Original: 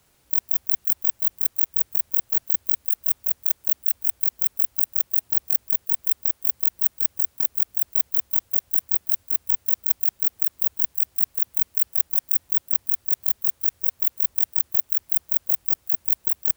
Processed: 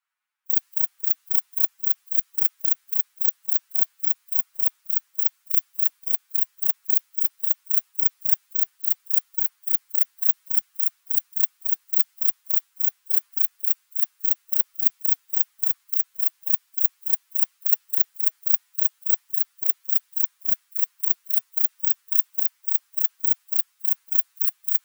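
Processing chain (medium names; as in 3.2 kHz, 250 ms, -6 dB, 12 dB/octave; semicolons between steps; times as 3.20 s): time stretch by phase-locked vocoder 1.5×; inverse Chebyshev high-pass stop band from 330 Hz, stop band 60 dB; three bands expanded up and down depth 70%; trim +1 dB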